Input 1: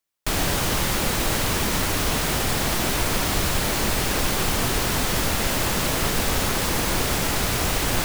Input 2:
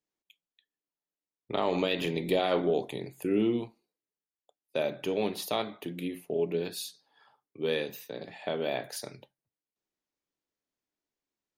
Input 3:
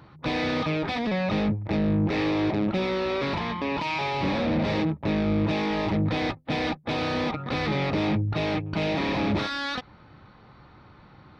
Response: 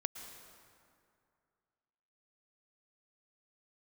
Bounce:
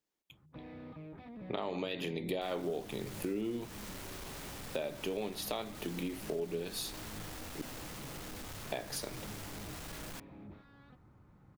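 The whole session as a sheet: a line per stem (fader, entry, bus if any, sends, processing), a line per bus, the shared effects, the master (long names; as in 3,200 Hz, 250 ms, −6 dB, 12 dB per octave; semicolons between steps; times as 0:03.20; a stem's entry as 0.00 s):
−13.5 dB, 2.15 s, bus A, no send, no echo send, no processing
+2.0 dB, 0.00 s, muted 0:07.62–0:08.72, no bus, no send, no echo send, no processing
−18.5 dB, 0.30 s, bus A, no send, echo send −15.5 dB, low-pass filter 2,600 Hz 12 dB per octave; low-shelf EQ 460 Hz +11 dB; automatic ducking −8 dB, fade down 0.70 s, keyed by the second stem
bus A: 0.0 dB, soft clipping −38.5 dBFS, distortion −9 dB; downward compressor, threshold −44 dBFS, peak gain reduction 4.5 dB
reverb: not used
echo: single-tap delay 849 ms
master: downward compressor 4 to 1, threshold −35 dBFS, peak gain reduction 13 dB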